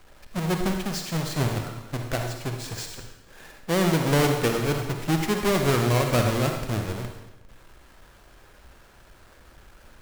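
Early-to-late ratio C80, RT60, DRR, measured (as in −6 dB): 6.5 dB, 1.0 s, 3.5 dB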